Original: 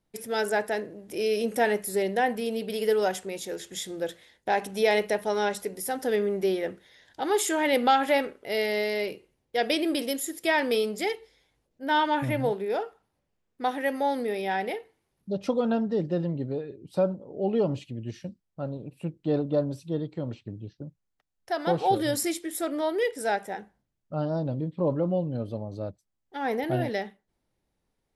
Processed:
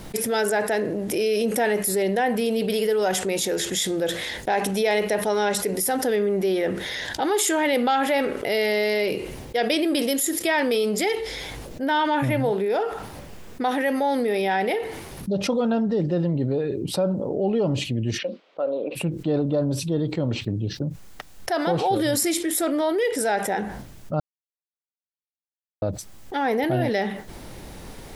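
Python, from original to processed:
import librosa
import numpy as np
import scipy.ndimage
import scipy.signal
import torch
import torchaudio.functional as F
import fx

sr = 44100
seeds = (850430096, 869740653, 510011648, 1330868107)

y = fx.cabinet(x, sr, low_hz=360.0, low_slope=24, high_hz=3600.0, hz=(370.0, 530.0, 870.0, 1700.0), db=(-6, 6, -5, -6), at=(18.17, 18.95), fade=0.02)
y = fx.edit(y, sr, fx.silence(start_s=24.2, length_s=1.62), tone=tone)
y = fx.env_flatten(y, sr, amount_pct=70)
y = F.gain(torch.from_numpy(y), -1.5).numpy()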